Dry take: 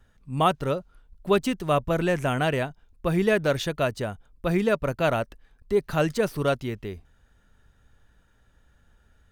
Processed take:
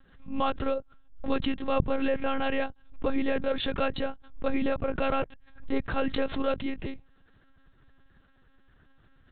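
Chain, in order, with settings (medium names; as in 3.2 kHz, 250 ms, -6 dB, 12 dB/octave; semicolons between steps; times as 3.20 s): peak limiter -16.5 dBFS, peak gain reduction 8.5 dB; monotone LPC vocoder at 8 kHz 270 Hz; swell ahead of each attack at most 120 dB/s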